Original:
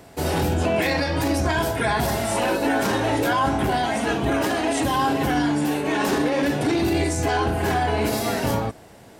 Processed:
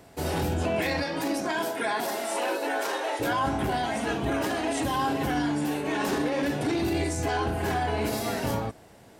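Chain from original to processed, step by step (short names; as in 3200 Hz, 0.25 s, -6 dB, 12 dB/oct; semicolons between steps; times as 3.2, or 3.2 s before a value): 1.02–3.19 HPF 150 Hz -> 450 Hz 24 dB/oct; gain -5.5 dB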